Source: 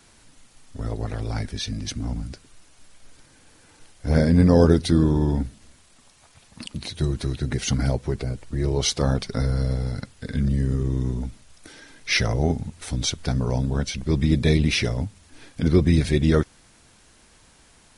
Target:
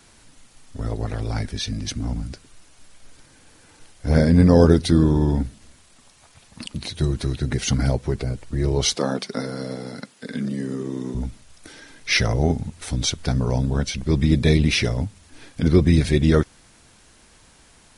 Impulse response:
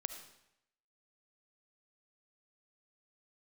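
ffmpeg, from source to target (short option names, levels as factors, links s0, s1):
-filter_complex "[0:a]asettb=1/sr,asplit=3[s0][s1][s2];[s0]atrim=end=8.954[s3];[s1]atrim=start=8.95:end=11.15,asetpts=PTS-STARTPTS,afade=t=in:d=0.004:c=qsin,afade=t=out:st=2.196:d=0.004:c=qsin,highpass=f=190:w=0.5412,highpass=f=190:w=1.3066[s4];[s2]atrim=start=11.146[s5];[s3][s4]acrossfade=d=0.004:c1=hsin:c2=qsin[s6];[s6][s5]acrossfade=d=0.004:c1=qsin:c2=hsin,volume=1.26"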